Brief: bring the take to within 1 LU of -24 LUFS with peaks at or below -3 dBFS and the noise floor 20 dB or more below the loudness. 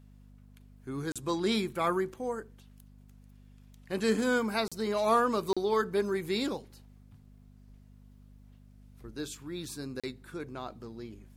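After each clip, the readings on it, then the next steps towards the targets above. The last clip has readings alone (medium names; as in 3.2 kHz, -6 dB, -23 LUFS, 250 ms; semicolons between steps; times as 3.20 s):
dropouts 4; longest dropout 36 ms; hum 50 Hz; highest harmonic 250 Hz; hum level -51 dBFS; loudness -31.5 LUFS; peak level -14.0 dBFS; loudness target -24.0 LUFS
-> interpolate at 1.12/4.68/5.53/10.00 s, 36 ms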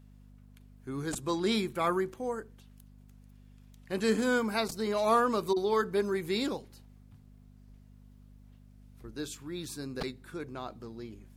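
dropouts 0; hum 50 Hz; highest harmonic 250 Hz; hum level -51 dBFS
-> de-hum 50 Hz, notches 5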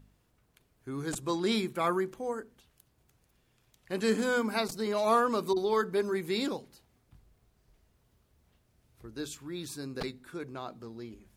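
hum not found; loudness -32.0 LUFS; peak level -14.0 dBFS; loudness target -24.0 LUFS
-> trim +8 dB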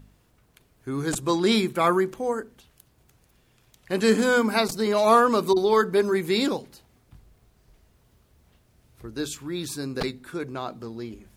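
loudness -24.0 LUFS; peak level -6.0 dBFS; noise floor -63 dBFS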